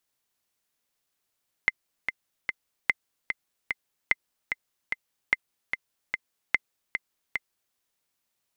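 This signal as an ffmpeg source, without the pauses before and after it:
-f lavfi -i "aevalsrc='pow(10,(-7-7*gte(mod(t,3*60/148),60/148))/20)*sin(2*PI*2070*mod(t,60/148))*exp(-6.91*mod(t,60/148)/0.03)':d=6.08:s=44100"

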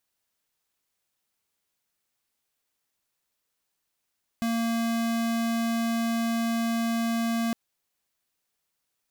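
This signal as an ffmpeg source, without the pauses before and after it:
-f lavfi -i "aevalsrc='0.0473*(2*lt(mod(230*t,1),0.5)-1)':d=3.11:s=44100"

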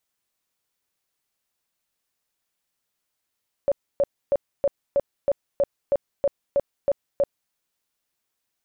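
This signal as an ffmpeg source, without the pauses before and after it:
-f lavfi -i "aevalsrc='0.158*sin(2*PI*563*mod(t,0.32))*lt(mod(t,0.32),21/563)':d=3.84:s=44100"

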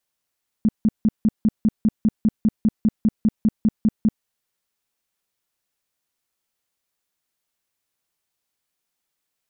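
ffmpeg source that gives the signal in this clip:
-f lavfi -i "aevalsrc='0.237*sin(2*PI*217*mod(t,0.2))*lt(mod(t,0.2),8/217)':d=3.6:s=44100"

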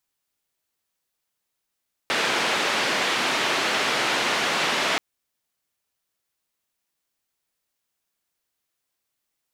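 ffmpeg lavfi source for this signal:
-f lavfi -i "anoisesrc=c=white:d=2.88:r=44100:seed=1,highpass=f=240,lowpass=f=3000,volume=-10.1dB"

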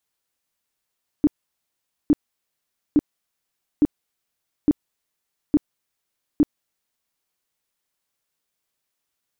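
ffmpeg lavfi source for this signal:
-f lavfi -i "aevalsrc='0.282*sin(2*PI*296*mod(t,0.86))*lt(mod(t,0.86),9/296)':d=6.02:s=44100"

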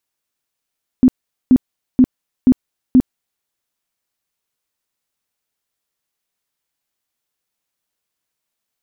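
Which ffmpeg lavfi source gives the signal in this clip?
-f lavfi -i "aevalsrc='0.562*sin(2*PI*255*mod(t,0.48))*lt(mod(t,0.48),13/255)':d=2.4:s=44100"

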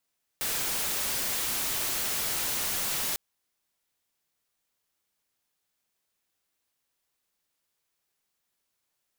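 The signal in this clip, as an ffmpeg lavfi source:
-f lavfi -i "anoisesrc=c=white:a=0.0548:d=2.75:r=44100:seed=1"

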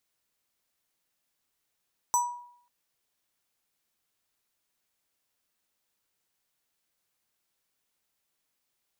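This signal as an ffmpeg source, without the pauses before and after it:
-f lavfi -i "aevalsrc='0.112*pow(10,-3*t/0.64)*sin(2*PI*969*t+1.1*pow(10,-3*t/0.46)*sin(2*PI*7.17*969*t))':d=0.54:s=44100"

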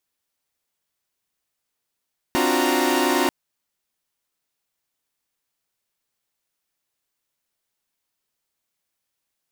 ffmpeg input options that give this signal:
-f lavfi -i "aevalsrc='0.0794*((2*mod(261.63*t,1)-1)+(2*mod(293.66*t,1)-1)+(2*mod(349.23*t,1)-1)+(2*mod(369.99*t,1)-1)+(2*mod(932.33*t,1)-1))':d=0.94:s=44100"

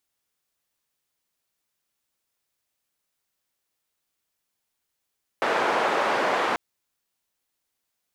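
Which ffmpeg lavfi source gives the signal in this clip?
-f lavfi -i "anoisesrc=c=white:d=1.14:r=44100:seed=1,highpass=f=430,lowpass=f=1100,volume=-4.1dB"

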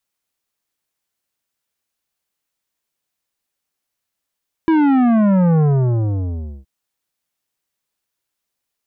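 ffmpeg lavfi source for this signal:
-f lavfi -i "aevalsrc='0.251*clip((1.97-t)/1.06,0,1)*tanh(3.98*sin(2*PI*330*1.97/log(65/330)*(exp(log(65/330)*t/1.97)-1)))/tanh(3.98)':d=1.97:s=44100"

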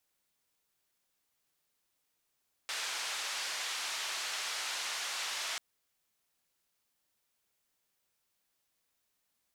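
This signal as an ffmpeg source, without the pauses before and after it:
-f lavfi -i "anoisesrc=c=white:d=2.89:r=44100:seed=1,highpass=f=860,lowpass=f=5600,volume=-26.3dB"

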